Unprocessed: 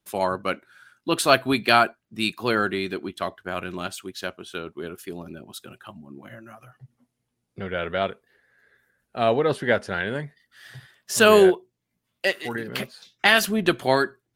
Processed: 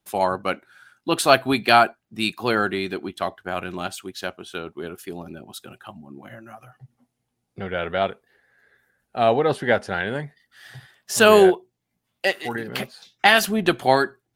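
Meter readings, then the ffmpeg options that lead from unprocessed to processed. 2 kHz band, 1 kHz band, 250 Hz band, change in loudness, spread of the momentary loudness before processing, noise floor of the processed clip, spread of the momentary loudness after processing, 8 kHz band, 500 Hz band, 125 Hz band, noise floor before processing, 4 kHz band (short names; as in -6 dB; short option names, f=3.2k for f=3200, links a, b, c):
+1.0 dB, +3.5 dB, +1.0 dB, +1.5 dB, 18 LU, -78 dBFS, 19 LU, +1.0 dB, +1.5 dB, +1.0 dB, -79 dBFS, +1.0 dB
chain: -af "equalizer=f=780:w=5.6:g=7.5,volume=1dB"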